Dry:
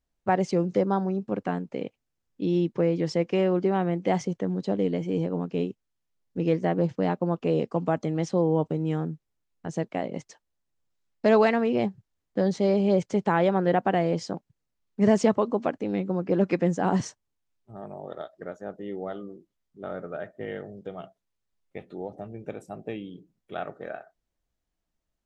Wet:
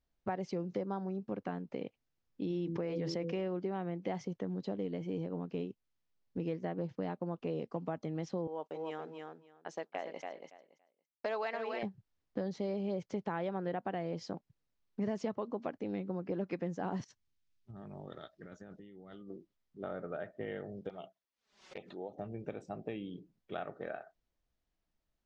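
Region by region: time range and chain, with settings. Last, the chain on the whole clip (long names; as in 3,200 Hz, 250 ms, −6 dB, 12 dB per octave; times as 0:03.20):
0:02.50–0:03.48: hum removal 83.62 Hz, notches 7 + envelope flattener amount 70%
0:08.47–0:11.83: downward expander −36 dBFS + high-pass filter 590 Hz + repeating echo 282 ms, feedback 16%, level −7.5 dB
0:17.04–0:19.30: parametric band 660 Hz −13.5 dB 2 octaves + compressor whose output falls as the input rises −48 dBFS
0:20.89–0:22.18: high-pass filter 490 Hz 6 dB per octave + flanger swept by the level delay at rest 5.7 ms, full sweep at −39 dBFS + background raised ahead of every attack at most 120 dB per second
whole clip: low-pass filter 6,000 Hz 24 dB per octave; downward compressor 3 to 1, threshold −35 dBFS; level −2 dB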